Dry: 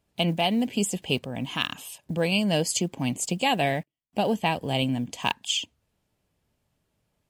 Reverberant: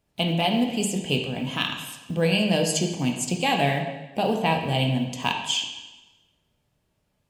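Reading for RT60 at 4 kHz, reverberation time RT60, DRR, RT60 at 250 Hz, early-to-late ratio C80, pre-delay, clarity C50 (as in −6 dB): 1.0 s, 1.1 s, 2.0 dB, 1.1 s, 7.5 dB, 6 ms, 5.5 dB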